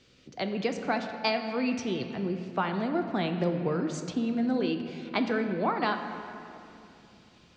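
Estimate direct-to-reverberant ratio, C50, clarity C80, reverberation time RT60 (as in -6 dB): 5.0 dB, 7.0 dB, 7.5 dB, 2.8 s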